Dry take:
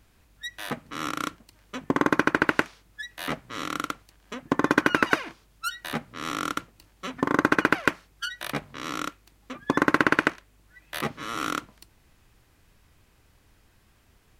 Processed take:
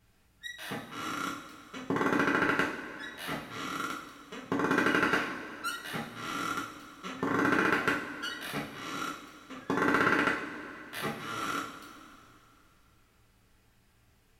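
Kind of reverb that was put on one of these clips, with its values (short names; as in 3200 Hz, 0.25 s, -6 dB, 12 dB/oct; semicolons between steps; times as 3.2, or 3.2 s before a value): two-slope reverb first 0.43 s, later 2.9 s, from -16 dB, DRR -5 dB; gain -10.5 dB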